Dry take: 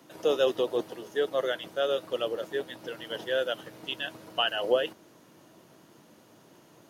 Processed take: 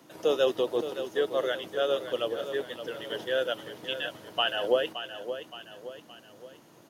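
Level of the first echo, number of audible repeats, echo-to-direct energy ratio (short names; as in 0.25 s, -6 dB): -10.5 dB, 3, -9.5 dB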